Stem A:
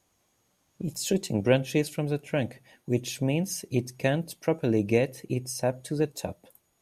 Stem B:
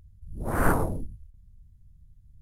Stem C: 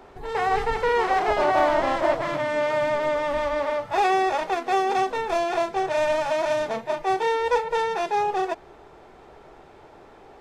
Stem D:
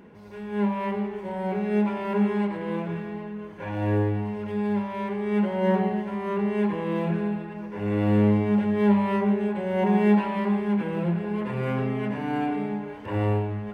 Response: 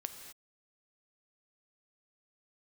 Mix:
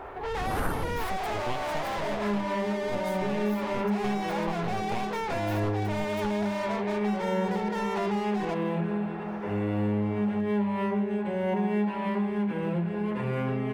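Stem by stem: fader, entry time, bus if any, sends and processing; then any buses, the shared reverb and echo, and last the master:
-7.0 dB, 0.00 s, no send, full-wave rectifier
-1.0 dB, 0.00 s, no send, bit-crush 12-bit
-17.0 dB, 0.00 s, no send, low-pass opened by the level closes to 1900 Hz, open at -18.5 dBFS; overdrive pedal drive 35 dB, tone 3100 Hz, clips at -7.5 dBFS
+0.5 dB, 1.70 s, no send, dry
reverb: off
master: compressor 3:1, threshold -26 dBFS, peak gain reduction 9 dB

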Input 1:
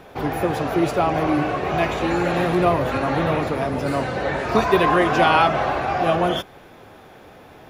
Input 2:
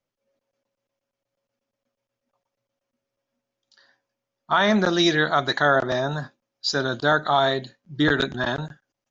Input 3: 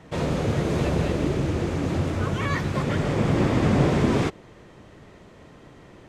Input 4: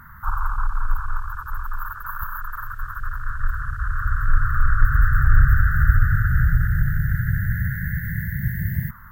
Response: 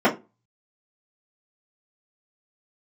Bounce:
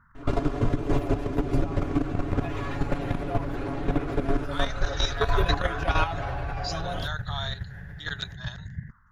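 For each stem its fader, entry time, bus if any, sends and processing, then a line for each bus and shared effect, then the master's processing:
-10.0 dB, 0.65 s, bus A, no send, dry
-11.0 dB, 0.00 s, no bus, no send, HPF 870 Hz 6 dB/oct; tilt +4 dB/oct
+3.0 dB, 0.15 s, bus A, no send, minimum comb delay 2.9 ms; tilt -2.5 dB/oct; auto duck -11 dB, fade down 1.85 s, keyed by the second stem
-9.0 dB, 0.00 s, no bus, no send, LPF 1900 Hz 12 dB/oct
bus A: 0.0 dB, comb 7.1 ms, depth 97%; compressor 16:1, threshold -17 dBFS, peak gain reduction 11 dB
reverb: off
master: level quantiser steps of 10 dB

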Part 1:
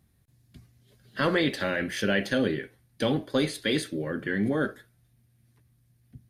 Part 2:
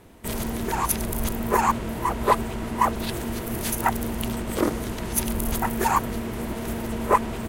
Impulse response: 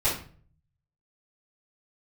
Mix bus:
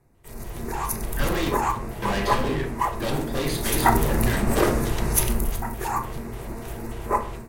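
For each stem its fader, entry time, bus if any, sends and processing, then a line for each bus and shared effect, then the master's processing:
-8.0 dB, 0.00 s, muted 1.5–2.02, send -10.5 dB, low-pass opened by the level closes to 1300 Hz, open at -23 dBFS; overloaded stage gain 32 dB
3.44 s -16.5 dB -> 3.91 s -7.5 dB -> 5.21 s -7.5 dB -> 5.58 s -17.5 dB, 0.00 s, send -14.5 dB, LFO notch square 3.4 Hz 240–3200 Hz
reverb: on, RT60 0.45 s, pre-delay 3 ms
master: AGC gain up to 11 dB

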